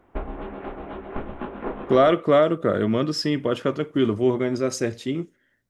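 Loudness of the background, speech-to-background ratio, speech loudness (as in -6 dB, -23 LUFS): -34.5 LUFS, 12.5 dB, -22.0 LUFS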